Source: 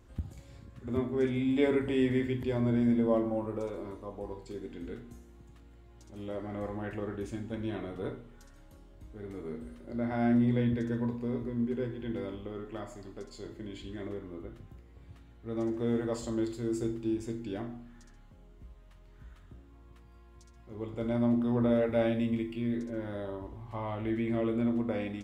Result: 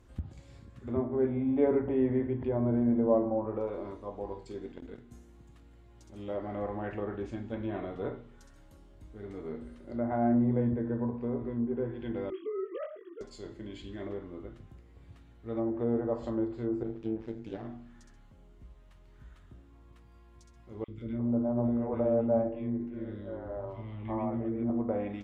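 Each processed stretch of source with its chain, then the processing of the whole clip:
0:04.72–0:05.12: noise gate −39 dBFS, range −45 dB + envelope flattener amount 100%
0:12.30–0:13.21: three sine waves on the formant tracks + double-tracking delay 21 ms −2.5 dB
0:16.83–0:17.65: notch filter 1,100 Hz, Q 18 + amplitude modulation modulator 110 Hz, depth 70% + windowed peak hold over 5 samples
0:20.84–0:24.70: high-shelf EQ 2,100 Hz −9 dB + three-band delay without the direct sound highs, lows, mids 40/350 ms, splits 370/1,700 Hz
whole clip: treble cut that deepens with the level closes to 1,100 Hz, closed at −28 dBFS; dynamic equaliser 720 Hz, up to +6 dB, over −47 dBFS, Q 1.1; level −1 dB

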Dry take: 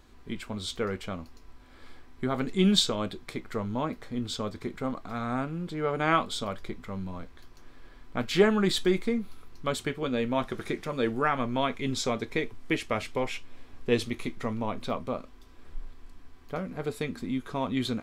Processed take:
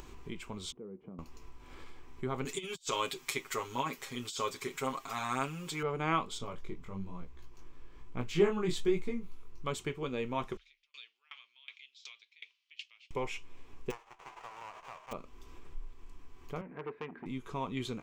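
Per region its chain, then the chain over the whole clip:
0:00.72–0:01.19: four-pole ladder band-pass 250 Hz, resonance 30% + upward compression, threshold −45 dBFS
0:02.45–0:05.83: spectral tilt +4 dB per octave + compressor whose output falls as the input rises −32 dBFS, ratio −0.5 + comb filter 7.4 ms, depth 90%
0:06.38–0:09.66: low-shelf EQ 230 Hz +6.5 dB + chorus effect 1.1 Hz, delay 16 ms, depth 6.8 ms
0:10.57–0:13.11: downward compressor 2 to 1, threshold −31 dBFS + flat-topped band-pass 3,600 Hz, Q 1.6 + tremolo with a ramp in dB decaying 2.7 Hz, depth 35 dB
0:13.90–0:15.11: spectral envelope flattened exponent 0.1 + four-pole ladder band-pass 940 Hz, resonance 35% + windowed peak hold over 5 samples
0:16.61–0:17.26: loudspeaker in its box 220–2,000 Hz, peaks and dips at 770 Hz −4 dB, 1,200 Hz −5 dB, 1,700 Hz +9 dB + saturating transformer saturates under 1,300 Hz
whole clip: EQ curve with evenly spaced ripples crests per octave 0.73, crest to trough 7 dB; upward compression, threshold −31 dBFS; level −7 dB

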